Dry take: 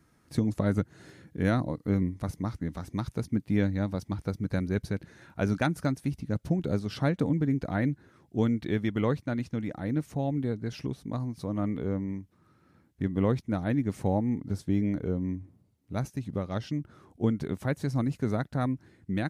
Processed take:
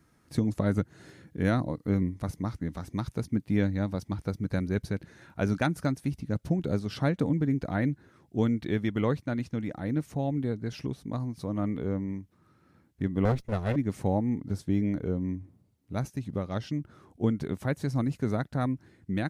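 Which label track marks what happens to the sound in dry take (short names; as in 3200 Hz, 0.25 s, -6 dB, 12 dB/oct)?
13.250000	13.760000	minimum comb delay 1.5 ms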